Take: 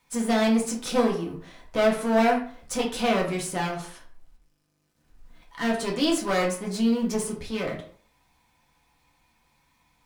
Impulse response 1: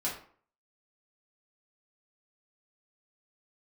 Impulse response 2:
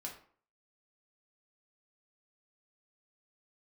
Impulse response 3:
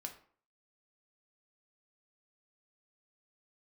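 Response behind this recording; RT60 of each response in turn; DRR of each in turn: 2; 0.50, 0.50, 0.50 s; -6.5, -1.5, 3.0 dB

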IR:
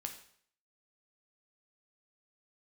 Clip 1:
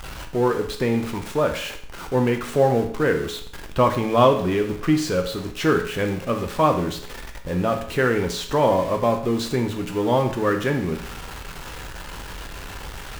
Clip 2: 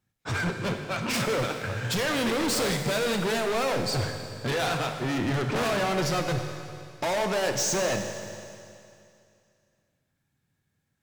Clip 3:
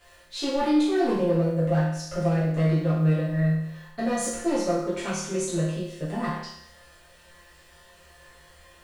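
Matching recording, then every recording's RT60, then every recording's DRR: 1; 0.60, 2.5, 0.75 s; 4.0, 5.0, -10.5 dB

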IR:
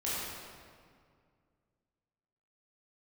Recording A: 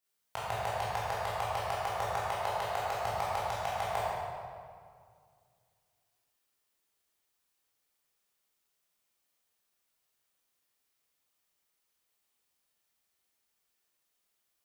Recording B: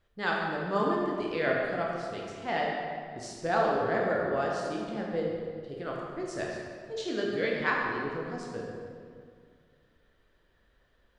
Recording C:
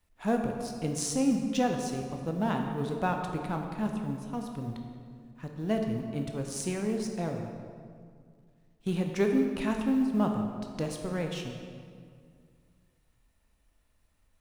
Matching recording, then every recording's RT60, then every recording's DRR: A; 2.1, 2.1, 2.1 s; -9.5, -3.0, 3.0 dB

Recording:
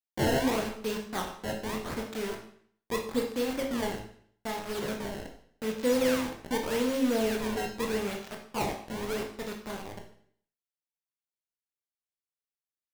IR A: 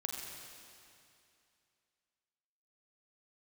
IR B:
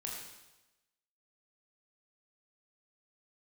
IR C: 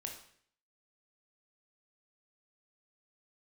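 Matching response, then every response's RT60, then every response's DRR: C; 2.6, 1.0, 0.60 s; 0.0, -2.5, 1.5 dB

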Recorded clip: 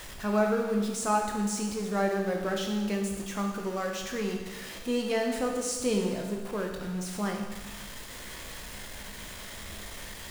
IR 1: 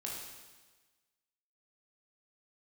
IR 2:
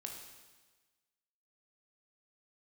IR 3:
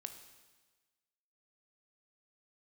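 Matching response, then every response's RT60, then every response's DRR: 2; 1.3, 1.3, 1.3 s; -3.5, 1.0, 7.0 dB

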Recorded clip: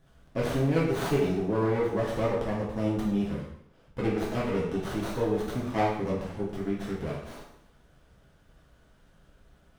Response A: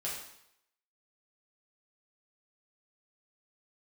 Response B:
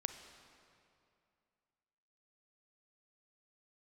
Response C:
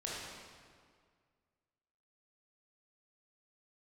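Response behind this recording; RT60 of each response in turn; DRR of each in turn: A; 0.75, 2.5, 1.9 s; -6.5, 8.0, -6.0 dB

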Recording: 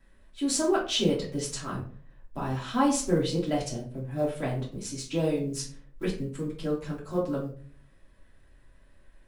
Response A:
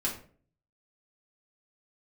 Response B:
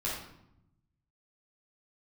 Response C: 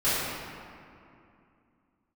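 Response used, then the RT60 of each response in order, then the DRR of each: A; 0.45, 0.80, 2.6 s; -5.5, -8.0, -14.0 dB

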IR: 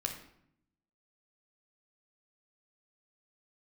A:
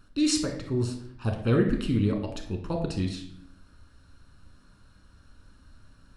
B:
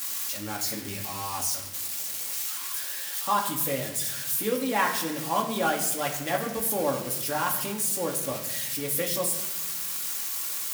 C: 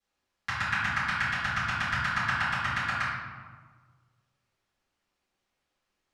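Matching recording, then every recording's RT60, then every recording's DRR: A; 0.70, 1.0, 1.5 s; 3.0, -1.5, -17.0 dB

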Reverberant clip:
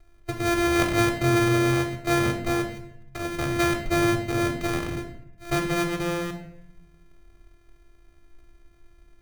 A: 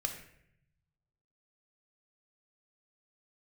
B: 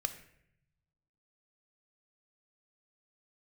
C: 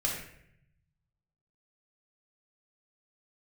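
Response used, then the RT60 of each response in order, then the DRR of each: A; 0.70, 0.75, 0.70 s; 3.5, 8.5, -3.5 dB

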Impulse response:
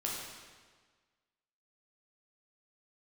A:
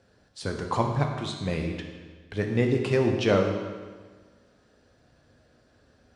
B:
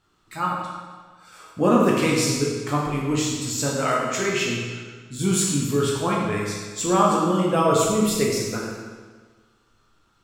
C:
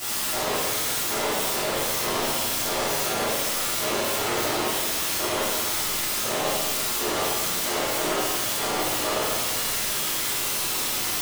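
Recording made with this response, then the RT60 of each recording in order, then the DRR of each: B; 1.5, 1.5, 1.5 s; 2.5, -4.0, -12.5 dB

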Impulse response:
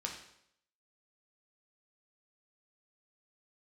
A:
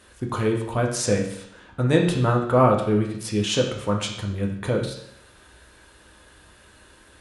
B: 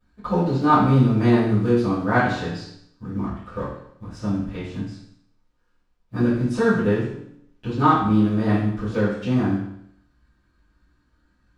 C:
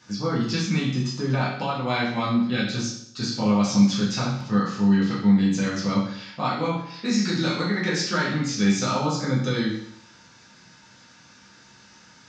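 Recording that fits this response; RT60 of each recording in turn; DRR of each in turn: A; 0.70, 0.70, 0.70 s; 0.0, -17.0, -7.5 dB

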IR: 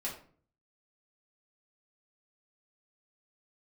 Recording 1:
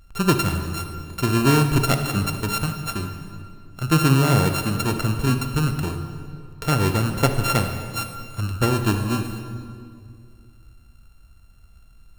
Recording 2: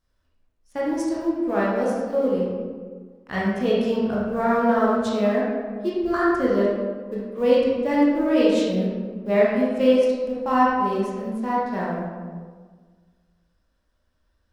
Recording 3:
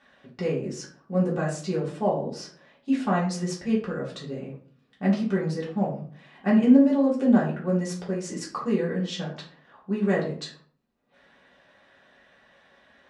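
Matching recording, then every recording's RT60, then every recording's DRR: 3; 2.2, 1.6, 0.45 s; 6.0, -6.5, -6.5 dB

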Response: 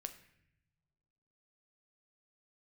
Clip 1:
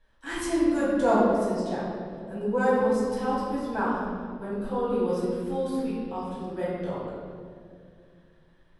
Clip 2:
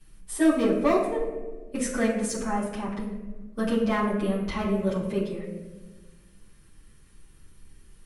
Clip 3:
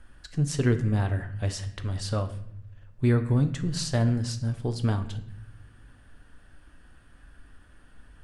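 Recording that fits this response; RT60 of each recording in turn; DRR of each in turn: 3; 2.2 s, 1.3 s, not exponential; -9.0, -10.5, 7.5 dB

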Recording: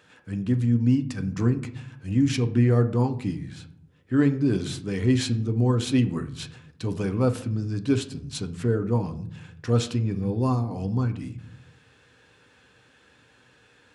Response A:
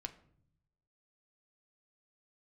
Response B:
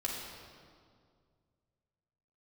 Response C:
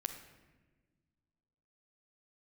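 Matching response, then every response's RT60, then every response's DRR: A; 0.65, 2.1, 1.3 s; 6.5, -4.0, 4.0 dB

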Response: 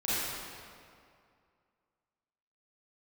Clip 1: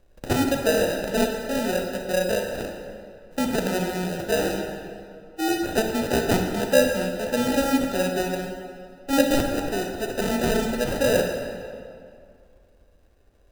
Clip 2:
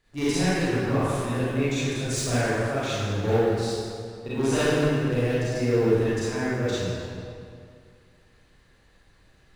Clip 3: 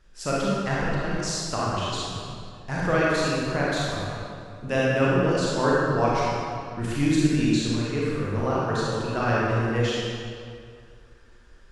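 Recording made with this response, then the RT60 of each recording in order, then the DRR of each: 2; 2.3, 2.3, 2.3 s; 3.0, -12.0, -7.0 dB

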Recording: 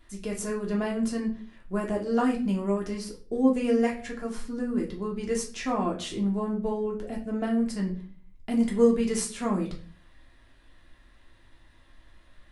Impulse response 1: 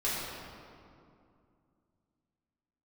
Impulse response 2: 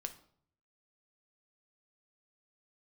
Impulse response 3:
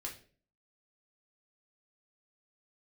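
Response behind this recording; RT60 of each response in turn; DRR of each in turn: 3; 2.4, 0.60, 0.45 s; -10.5, 6.5, -1.5 dB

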